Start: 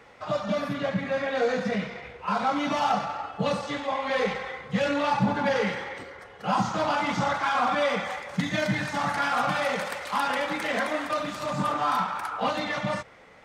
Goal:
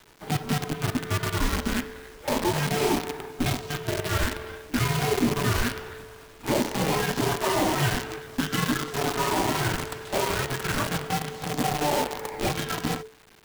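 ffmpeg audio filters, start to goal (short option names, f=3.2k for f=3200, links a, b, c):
-af "acrusher=bits=5:dc=4:mix=0:aa=0.000001,afreqshift=-440"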